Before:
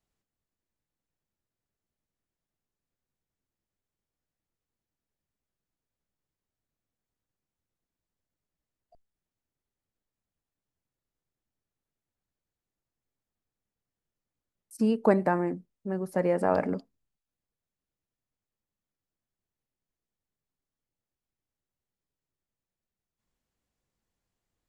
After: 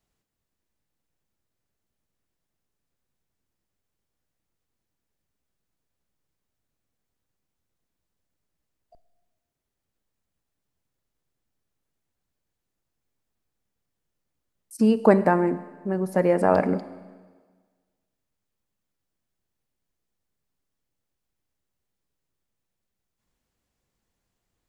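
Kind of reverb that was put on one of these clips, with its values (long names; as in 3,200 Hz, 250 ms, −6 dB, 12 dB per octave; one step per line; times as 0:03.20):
four-comb reverb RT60 1.5 s, combs from 33 ms, DRR 14.5 dB
level +5.5 dB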